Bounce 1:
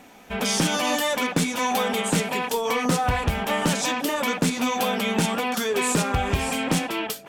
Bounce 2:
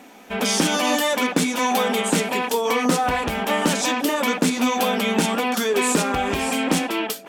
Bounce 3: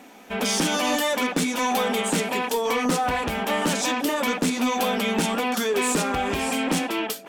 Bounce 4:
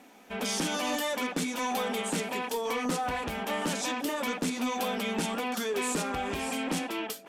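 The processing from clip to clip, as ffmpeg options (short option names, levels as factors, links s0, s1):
-af "lowshelf=f=170:t=q:w=1.5:g=-10,volume=1.33"
-af "asoftclip=type=tanh:threshold=0.224,volume=0.841"
-af "volume=0.422" -ar 48000 -c:a sbc -b:a 128k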